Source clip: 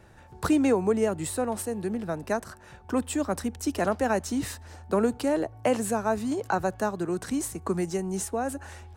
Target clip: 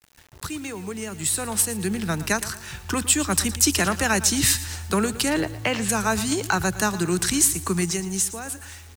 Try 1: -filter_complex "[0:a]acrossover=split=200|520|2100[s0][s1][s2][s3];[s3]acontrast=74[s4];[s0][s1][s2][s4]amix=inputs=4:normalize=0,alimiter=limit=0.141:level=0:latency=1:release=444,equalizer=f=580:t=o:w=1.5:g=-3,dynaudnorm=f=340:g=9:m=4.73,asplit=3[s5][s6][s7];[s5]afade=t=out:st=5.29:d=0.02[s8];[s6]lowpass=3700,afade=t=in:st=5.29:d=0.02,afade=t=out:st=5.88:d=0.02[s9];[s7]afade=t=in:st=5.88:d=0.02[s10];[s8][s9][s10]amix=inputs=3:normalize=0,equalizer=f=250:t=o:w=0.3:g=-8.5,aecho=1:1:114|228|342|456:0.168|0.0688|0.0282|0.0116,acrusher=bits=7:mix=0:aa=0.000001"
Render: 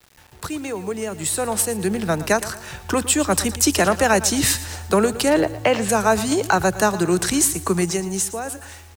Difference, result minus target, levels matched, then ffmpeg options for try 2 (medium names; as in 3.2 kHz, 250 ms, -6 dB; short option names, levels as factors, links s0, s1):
500 Hz band +6.0 dB
-filter_complex "[0:a]acrossover=split=200|520|2100[s0][s1][s2][s3];[s3]acontrast=74[s4];[s0][s1][s2][s4]amix=inputs=4:normalize=0,alimiter=limit=0.141:level=0:latency=1:release=444,equalizer=f=580:t=o:w=1.5:g=-14,dynaudnorm=f=340:g=9:m=4.73,asplit=3[s5][s6][s7];[s5]afade=t=out:st=5.29:d=0.02[s8];[s6]lowpass=3700,afade=t=in:st=5.29:d=0.02,afade=t=out:st=5.88:d=0.02[s9];[s7]afade=t=in:st=5.88:d=0.02[s10];[s8][s9][s10]amix=inputs=3:normalize=0,equalizer=f=250:t=o:w=0.3:g=-8.5,aecho=1:1:114|228|342|456:0.168|0.0688|0.0282|0.0116,acrusher=bits=7:mix=0:aa=0.000001"